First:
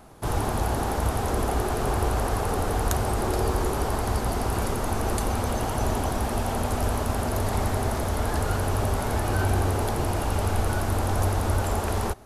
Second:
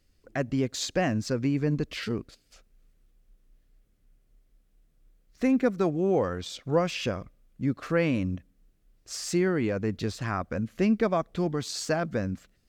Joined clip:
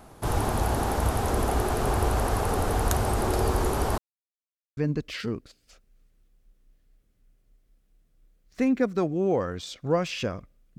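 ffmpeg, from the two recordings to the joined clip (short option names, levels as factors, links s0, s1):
-filter_complex "[0:a]apad=whole_dur=10.78,atrim=end=10.78,asplit=2[s0][s1];[s0]atrim=end=3.98,asetpts=PTS-STARTPTS,afade=t=out:st=3.976:d=0.004:c=hsin[s2];[s1]atrim=start=3.98:end=4.77,asetpts=PTS-STARTPTS,volume=0[s3];[1:a]atrim=start=1.6:end=7.61,asetpts=PTS-STARTPTS,afade=t=in:d=0.004:c=hsin[s4];[s2][s3][s4]concat=n=3:v=0:a=1"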